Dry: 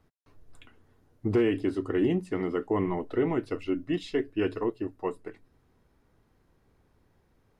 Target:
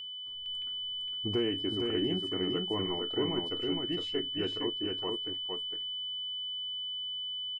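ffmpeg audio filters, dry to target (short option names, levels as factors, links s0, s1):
-filter_complex "[0:a]aeval=exprs='val(0)+0.0251*sin(2*PI*3000*n/s)':c=same,asplit=2[s0][s1];[s1]aecho=0:1:460:0.668[s2];[s0][s2]amix=inputs=2:normalize=0,volume=0.447"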